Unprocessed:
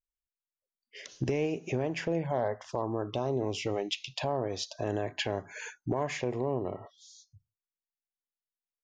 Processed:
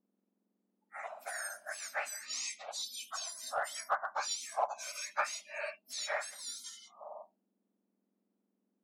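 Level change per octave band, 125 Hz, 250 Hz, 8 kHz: below −40 dB, below −35 dB, +7.5 dB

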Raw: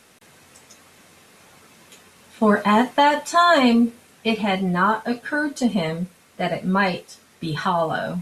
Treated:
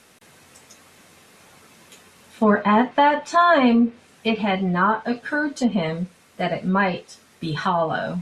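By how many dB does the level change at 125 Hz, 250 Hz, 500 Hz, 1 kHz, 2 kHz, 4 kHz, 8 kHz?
0.0, 0.0, 0.0, 0.0, −0.5, −4.0, −5.0 decibels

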